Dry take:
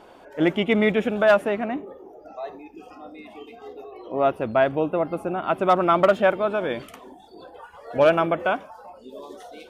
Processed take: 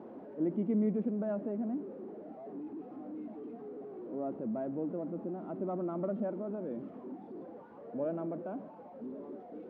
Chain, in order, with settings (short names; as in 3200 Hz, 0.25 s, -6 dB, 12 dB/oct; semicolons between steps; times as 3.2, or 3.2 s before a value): zero-crossing step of -24.5 dBFS; ladder band-pass 260 Hz, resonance 45%; Schroeder reverb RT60 2.3 s, combs from 29 ms, DRR 17 dB; gain -2.5 dB